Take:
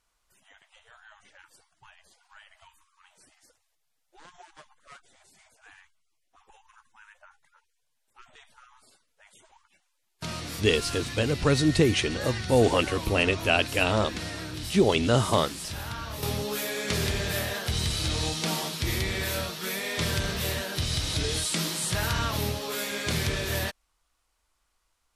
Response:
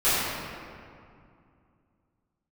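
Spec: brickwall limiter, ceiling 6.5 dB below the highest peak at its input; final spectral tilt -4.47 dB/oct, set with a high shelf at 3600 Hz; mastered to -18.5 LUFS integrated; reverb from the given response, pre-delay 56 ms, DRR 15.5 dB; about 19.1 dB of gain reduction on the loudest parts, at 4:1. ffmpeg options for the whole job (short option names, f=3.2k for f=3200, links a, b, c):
-filter_complex "[0:a]highshelf=f=3.6k:g=-8,acompressor=threshold=-40dB:ratio=4,alimiter=level_in=7dB:limit=-24dB:level=0:latency=1,volume=-7dB,asplit=2[a][b];[1:a]atrim=start_sample=2205,adelay=56[c];[b][c]afir=irnorm=-1:irlink=0,volume=-33dB[d];[a][d]amix=inputs=2:normalize=0,volume=23.5dB"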